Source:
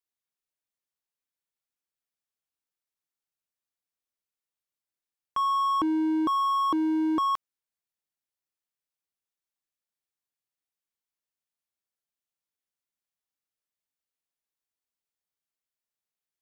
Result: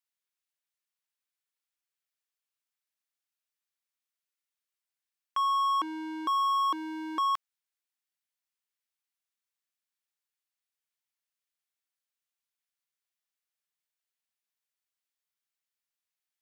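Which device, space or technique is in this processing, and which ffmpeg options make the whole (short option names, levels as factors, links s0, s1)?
filter by subtraction: -filter_complex "[0:a]asplit=2[s0][s1];[s1]lowpass=1900,volume=-1[s2];[s0][s2]amix=inputs=2:normalize=0"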